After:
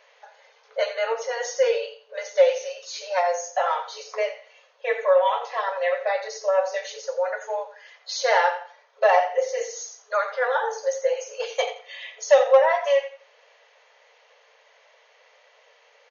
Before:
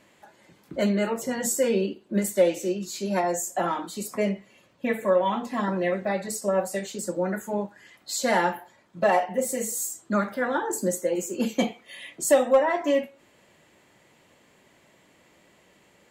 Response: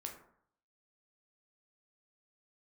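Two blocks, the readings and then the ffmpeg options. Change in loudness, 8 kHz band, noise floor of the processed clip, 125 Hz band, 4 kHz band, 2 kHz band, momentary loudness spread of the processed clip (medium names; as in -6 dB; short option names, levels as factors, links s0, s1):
+2.0 dB, -5.5 dB, -59 dBFS, under -40 dB, +4.0 dB, +4.0 dB, 15 LU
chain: -af "afftfilt=real='re*between(b*sr/4096,430,6700)':imag='im*between(b*sr/4096,430,6700)':win_size=4096:overlap=0.75,aecho=1:1:86|172|258:0.237|0.0593|0.0148,volume=1.5"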